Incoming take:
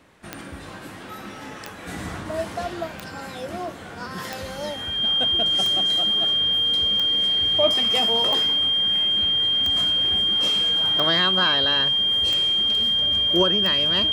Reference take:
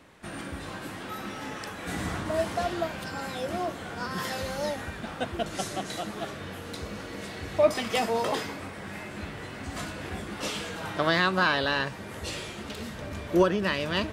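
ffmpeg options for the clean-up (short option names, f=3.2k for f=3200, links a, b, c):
-af "adeclick=t=4,bandreject=f=3.2k:w=30"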